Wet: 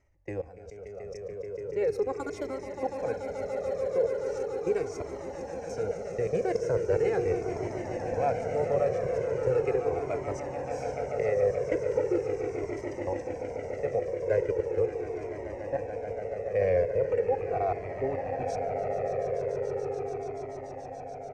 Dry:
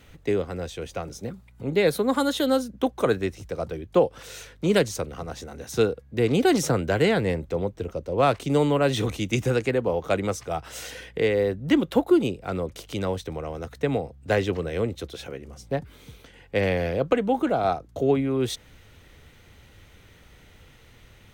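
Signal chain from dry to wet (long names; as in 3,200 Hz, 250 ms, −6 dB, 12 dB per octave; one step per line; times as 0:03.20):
drawn EQ curve 100 Hz 0 dB, 240 Hz −10 dB, 480 Hz +7 dB, 780 Hz +2 dB, 1,200 Hz −7 dB, 2,300 Hz −2 dB, 3,500 Hz −25 dB, 5,400 Hz −2 dB, 7,900 Hz −8 dB, 11,000 Hz −22 dB
output level in coarse steps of 22 dB
downsampling to 32,000 Hz
on a send: echo that builds up and dies away 144 ms, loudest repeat 8, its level −11 dB
on the sum: flanger whose copies keep moving one way falling 0.39 Hz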